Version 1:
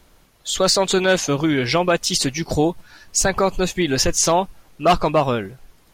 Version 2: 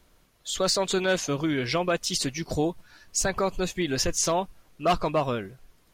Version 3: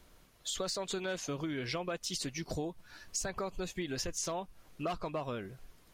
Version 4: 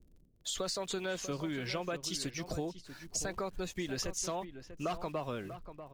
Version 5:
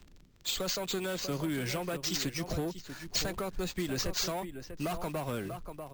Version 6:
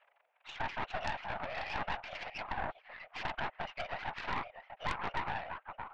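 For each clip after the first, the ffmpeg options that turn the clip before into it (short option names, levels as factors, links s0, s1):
-af "bandreject=f=830:w=12,volume=0.422"
-af "acompressor=threshold=0.0158:ratio=4"
-filter_complex "[0:a]acrossover=split=420[s0][s1];[s1]aeval=exprs='val(0)*gte(abs(val(0)),0.00141)':c=same[s2];[s0][s2]amix=inputs=2:normalize=0,asplit=2[s3][s4];[s4]adelay=641.4,volume=0.282,highshelf=f=4000:g=-14.4[s5];[s3][s5]amix=inputs=2:normalize=0"
-filter_complex "[0:a]acrossover=split=260|5700[s0][s1][s2];[s1]asoftclip=type=tanh:threshold=0.0133[s3];[s2]acompressor=mode=upward:threshold=0.00141:ratio=2.5[s4];[s0][s3][s4]amix=inputs=3:normalize=0,acrusher=samples=4:mix=1:aa=0.000001,volume=1.88"
-af "highpass=f=410:t=q:w=0.5412,highpass=f=410:t=q:w=1.307,lowpass=f=2400:t=q:w=0.5176,lowpass=f=2400:t=q:w=0.7071,lowpass=f=2400:t=q:w=1.932,afreqshift=310,afftfilt=real='hypot(re,im)*cos(2*PI*random(0))':imag='hypot(re,im)*sin(2*PI*random(1))':win_size=512:overlap=0.75,aeval=exprs='0.0335*(cos(1*acos(clip(val(0)/0.0335,-1,1)))-cos(1*PI/2))+0.0119*(cos(3*acos(clip(val(0)/0.0335,-1,1)))-cos(3*PI/2))+0.00944*(cos(4*acos(clip(val(0)/0.0335,-1,1)))-cos(4*PI/2))+0.00944*(cos(5*acos(clip(val(0)/0.0335,-1,1)))-cos(5*PI/2))+0.00211*(cos(7*acos(clip(val(0)/0.0335,-1,1)))-cos(7*PI/2))':c=same,volume=2.24"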